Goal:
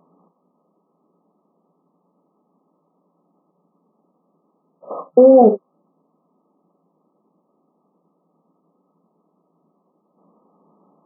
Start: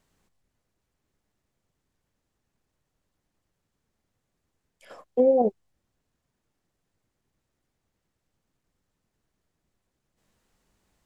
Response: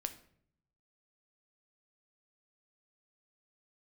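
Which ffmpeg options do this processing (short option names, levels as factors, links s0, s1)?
-filter_complex "[1:a]atrim=start_sample=2205,atrim=end_sample=3528[s0];[0:a][s0]afir=irnorm=-1:irlink=0,acrusher=bits=5:mode=log:mix=0:aa=0.000001,afftfilt=real='re*between(b*sr/4096,160,1300)':imag='im*between(b*sr/4096,160,1300)':win_size=4096:overlap=0.75,alimiter=level_in=10.6:limit=0.891:release=50:level=0:latency=1,volume=0.891"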